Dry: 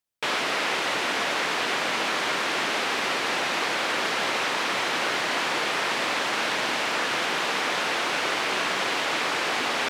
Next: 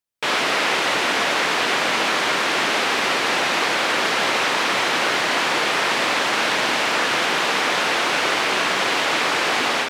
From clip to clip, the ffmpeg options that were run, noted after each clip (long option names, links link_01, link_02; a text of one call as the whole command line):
ffmpeg -i in.wav -af "dynaudnorm=framelen=140:gausssize=3:maxgain=8dB,volume=-2dB" out.wav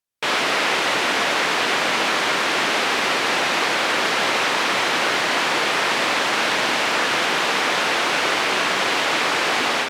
ffmpeg -i in.wav -ar 48000 -c:a libopus -b:a 256k out.opus